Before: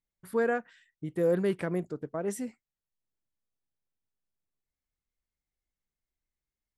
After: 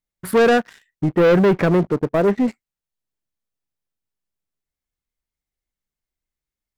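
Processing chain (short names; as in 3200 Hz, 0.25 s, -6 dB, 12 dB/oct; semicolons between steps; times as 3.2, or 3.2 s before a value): 1.04–2.48 LPF 2100 Hz 24 dB/oct; sample leveller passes 3; gain +8 dB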